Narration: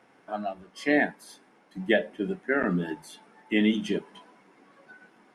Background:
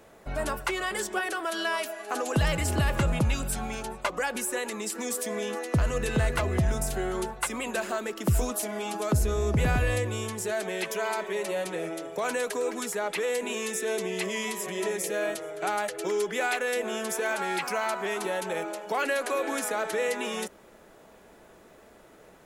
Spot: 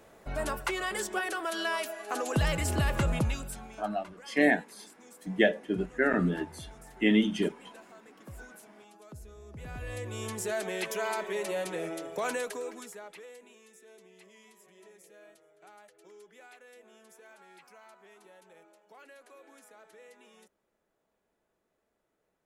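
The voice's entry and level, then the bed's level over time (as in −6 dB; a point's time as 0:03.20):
3.50 s, −0.5 dB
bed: 0:03.19 −2.5 dB
0:04.08 −23 dB
0:09.48 −23 dB
0:10.31 −2.5 dB
0:12.30 −2.5 dB
0:13.59 −26 dB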